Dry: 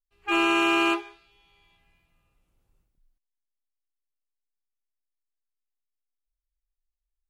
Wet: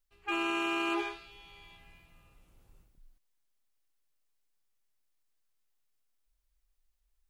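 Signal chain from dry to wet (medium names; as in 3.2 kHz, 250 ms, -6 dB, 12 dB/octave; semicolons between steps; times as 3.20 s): peak limiter -19 dBFS, peak gain reduction 7.5 dB; reverse; compression 4:1, threshold -40 dBFS, peak gain reduction 13 dB; reverse; trim +8.5 dB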